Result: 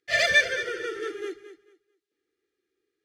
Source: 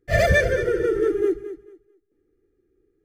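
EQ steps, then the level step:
resonant band-pass 3,700 Hz, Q 1.3
+8.5 dB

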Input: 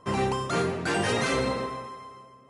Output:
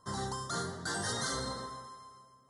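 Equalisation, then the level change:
Butterworth band-reject 2,500 Hz, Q 1.2
guitar amp tone stack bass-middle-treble 5-5-5
+6.0 dB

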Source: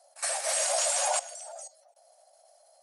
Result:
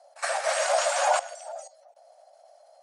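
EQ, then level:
low-pass filter 7,600 Hz 12 dB per octave
dynamic equaliser 1,400 Hz, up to +5 dB, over −49 dBFS, Q 1.9
high-shelf EQ 3,100 Hz −10.5 dB
+7.0 dB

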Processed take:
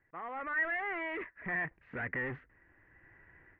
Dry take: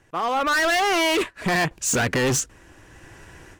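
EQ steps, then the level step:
transistor ladder low-pass 2,100 Hz, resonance 75%
high-frequency loss of the air 450 metres
−6.0 dB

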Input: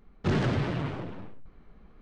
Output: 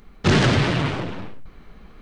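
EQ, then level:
high-shelf EQ 2,000 Hz +10.5 dB
+8.5 dB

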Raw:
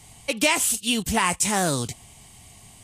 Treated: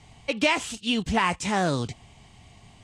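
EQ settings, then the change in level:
high-frequency loss of the air 140 metres
0.0 dB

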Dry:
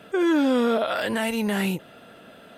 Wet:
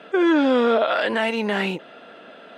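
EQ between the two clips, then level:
band-pass filter 290–3,900 Hz
+5.0 dB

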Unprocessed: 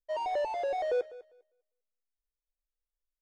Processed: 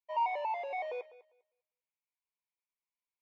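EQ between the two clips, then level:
pair of resonant band-passes 1,500 Hz, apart 1.2 octaves
+8.0 dB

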